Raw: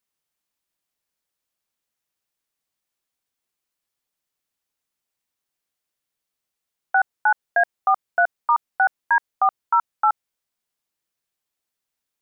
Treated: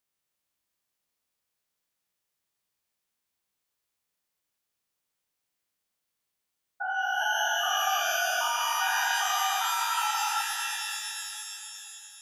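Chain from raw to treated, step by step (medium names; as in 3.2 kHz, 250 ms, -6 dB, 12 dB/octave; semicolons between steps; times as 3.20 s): spectrogram pixelated in time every 400 ms; pitch-shifted reverb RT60 3.1 s, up +12 st, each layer -2 dB, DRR 3.5 dB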